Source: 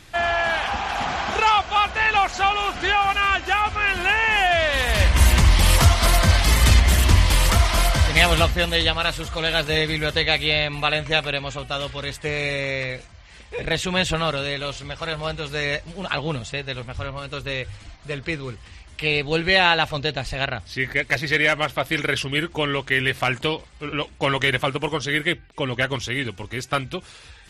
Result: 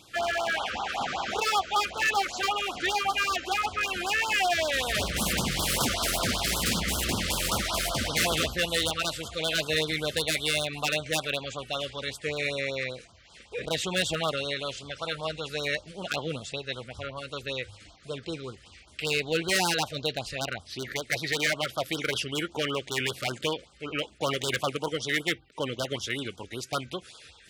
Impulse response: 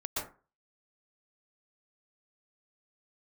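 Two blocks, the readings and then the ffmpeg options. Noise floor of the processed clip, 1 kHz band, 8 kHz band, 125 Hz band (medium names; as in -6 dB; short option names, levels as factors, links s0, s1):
-55 dBFS, -8.0 dB, -2.5 dB, -14.5 dB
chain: -af "aeval=exprs='0.2*(abs(mod(val(0)/0.2+3,4)-2)-1)':c=same,highpass=f=250:p=1,afftfilt=real='re*(1-between(b*sr/1024,800*pow(2200/800,0.5+0.5*sin(2*PI*5.2*pts/sr))/1.41,800*pow(2200/800,0.5+0.5*sin(2*PI*5.2*pts/sr))*1.41))':imag='im*(1-between(b*sr/1024,800*pow(2200/800,0.5+0.5*sin(2*PI*5.2*pts/sr))/1.41,800*pow(2200/800,0.5+0.5*sin(2*PI*5.2*pts/sr))*1.41))':win_size=1024:overlap=0.75,volume=0.668"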